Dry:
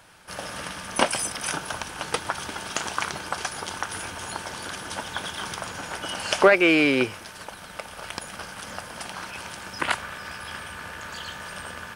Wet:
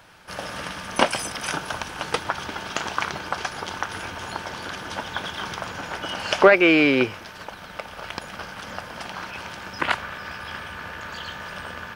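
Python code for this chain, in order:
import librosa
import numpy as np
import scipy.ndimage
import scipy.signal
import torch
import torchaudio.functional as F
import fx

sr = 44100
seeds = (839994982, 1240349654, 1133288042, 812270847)

y = fx.peak_eq(x, sr, hz=9300.0, db=fx.steps((0.0, -8.5), (2.24, -14.5)), octaves=0.87)
y = F.gain(torch.from_numpy(y), 2.5).numpy()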